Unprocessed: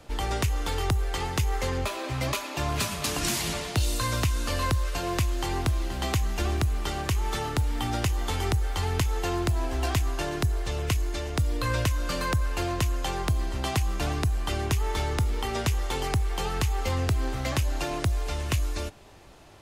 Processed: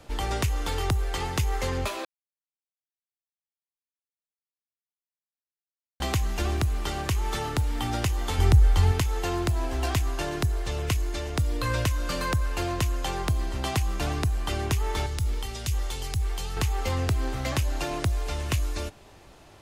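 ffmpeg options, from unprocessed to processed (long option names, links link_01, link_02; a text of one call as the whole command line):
ffmpeg -i in.wav -filter_complex "[0:a]asettb=1/sr,asplit=3[link_01][link_02][link_03];[link_01]atrim=end=8.384[link_04];[link_02]atrim=start=8.38:end=8.92,asetpts=PTS-STARTPTS,afade=type=in:duration=0.004:curve=qsin,afade=type=out:start_time=0.536:duration=0.004:curve=qsin,lowshelf=frequency=180:gain=11[link_05];[link_03]atrim=start=8.916[link_06];[link_04][link_05]acrossfade=duration=0.004:curve1=hsin:curve2=qsin[link_07];[link_07][link_06]acrossfade=duration=0.004:curve1=qsin:curve2=hsin,asettb=1/sr,asplit=3[link_08][link_09][link_10];[link_08]atrim=end=15.064[link_11];[link_09]atrim=start=15.06:end=16.57,asetpts=PTS-STARTPTS,afade=type=in:duration=0.004:curve=qsin,afade=type=out:start_time=1.506:duration=0.004:curve=qsin,acrossover=split=120|3000[link_12][link_13][link_14];[link_13]acompressor=threshold=-39dB:ratio=6:attack=3.2:release=140:knee=2.83:detection=peak[link_15];[link_12][link_15][link_14]amix=inputs=3:normalize=0[link_16];[link_10]atrim=start=16.566[link_17];[link_11][link_16]acrossfade=duration=0.004:curve1=hsin:curve2=qsin[link_18];[link_18][link_17]acrossfade=duration=0.004:curve1=qsin:curve2=hsin,asplit=3[link_19][link_20][link_21];[link_19]atrim=end=2.05,asetpts=PTS-STARTPTS,afade=type=out:start_time=2.046:duration=0.004:curve=hsin[link_22];[link_20]atrim=start=2.05:end=6,asetpts=PTS-STARTPTS,volume=0[link_23];[link_21]atrim=start=6,asetpts=PTS-STARTPTS,afade=type=in:duration=0.004:curve=hsin[link_24];[link_22][link_23][link_24]concat=n=3:v=0:a=1" out.wav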